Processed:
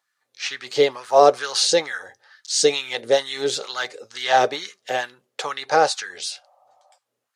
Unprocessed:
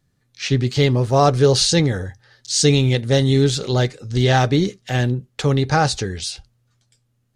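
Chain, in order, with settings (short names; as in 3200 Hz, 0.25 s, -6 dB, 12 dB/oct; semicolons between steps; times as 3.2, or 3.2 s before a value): LFO high-pass sine 2.2 Hz 440–1500 Hz; spectral repair 6.37–6.95, 520–1300 Hz before; gain -2 dB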